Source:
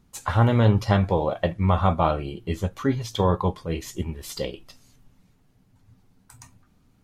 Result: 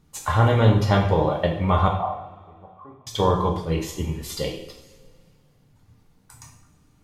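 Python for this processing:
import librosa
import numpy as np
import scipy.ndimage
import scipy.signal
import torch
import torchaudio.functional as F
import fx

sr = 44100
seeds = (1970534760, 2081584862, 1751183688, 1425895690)

y = fx.formant_cascade(x, sr, vowel='a', at=(1.88, 3.07))
y = fx.rev_double_slope(y, sr, seeds[0], early_s=0.6, late_s=2.2, knee_db=-18, drr_db=0.5)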